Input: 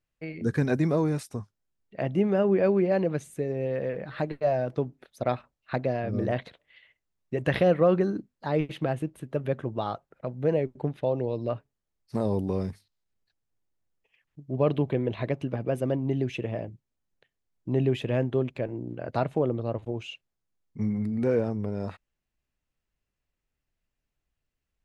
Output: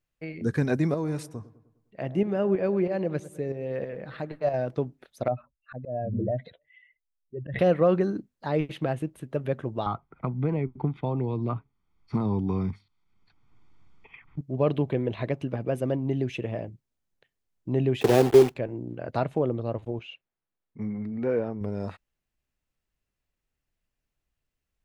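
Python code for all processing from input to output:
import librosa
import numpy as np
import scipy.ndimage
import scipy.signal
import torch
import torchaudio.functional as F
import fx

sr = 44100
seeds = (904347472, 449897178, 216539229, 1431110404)

y = fx.chain(x, sr, fx.tremolo_shape(shape='saw_up', hz=3.1, depth_pct=55),
    fx.echo_wet_lowpass(ms=102, feedback_pct=50, hz=1400.0, wet_db=-15.5), at=(0.94, 4.54))
y = fx.chain(y, sr, fx.spec_expand(power=2.3),
    fx.auto_swell(attack_ms=103.0), at=(5.28, 7.59))
y = fx.chain(y, sr, fx.lowpass(hz=3000.0, slope=12),
    fx.comb(ms=0.9, depth=0.79),
    fx.band_squash(depth_pct=70), at=(9.86, 14.41))
y = fx.chain(y, sr, fx.block_float(bits=3),
    fx.small_body(hz=(400.0, 760.0), ring_ms=25, db=13),
    fx.band_squash(depth_pct=40), at=(18.01, 18.56))
y = fx.chain(y, sr, fx.lowpass(hz=2800.0, slope=12),
    fx.low_shelf(hz=170.0, db=-9.5), at=(19.99, 21.61))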